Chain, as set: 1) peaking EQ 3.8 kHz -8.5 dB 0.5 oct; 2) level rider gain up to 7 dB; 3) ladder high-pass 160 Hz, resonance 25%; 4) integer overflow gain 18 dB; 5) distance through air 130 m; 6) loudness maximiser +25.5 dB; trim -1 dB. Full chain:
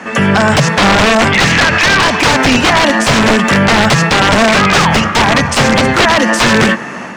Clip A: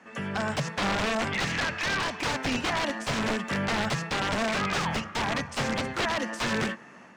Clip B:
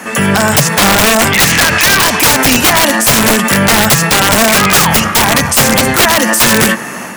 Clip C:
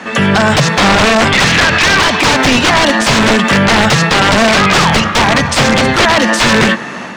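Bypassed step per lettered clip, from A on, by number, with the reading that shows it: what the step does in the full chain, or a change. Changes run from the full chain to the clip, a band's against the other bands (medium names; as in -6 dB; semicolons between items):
6, crest factor change +2.0 dB; 5, 8 kHz band +10.5 dB; 1, 4 kHz band +1.5 dB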